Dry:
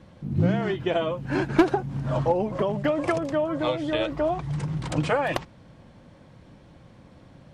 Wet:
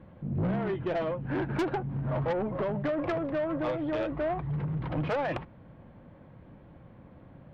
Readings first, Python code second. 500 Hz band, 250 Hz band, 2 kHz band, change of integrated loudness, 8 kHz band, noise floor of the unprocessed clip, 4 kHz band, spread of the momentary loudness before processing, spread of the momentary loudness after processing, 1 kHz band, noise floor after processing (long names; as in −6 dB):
−5.5 dB, −5.5 dB, −6.5 dB, −5.5 dB, below −15 dB, −52 dBFS, −11.5 dB, 6 LU, 3 LU, −6.0 dB, −53 dBFS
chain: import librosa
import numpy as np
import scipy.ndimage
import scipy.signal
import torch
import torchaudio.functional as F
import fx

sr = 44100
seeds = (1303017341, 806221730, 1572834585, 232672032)

y = scipy.ndimage.gaussian_filter1d(x, 3.4, mode='constant')
y = 10.0 ** (-24.0 / 20.0) * np.tanh(y / 10.0 ** (-24.0 / 20.0))
y = y * librosa.db_to_amplitude(-1.0)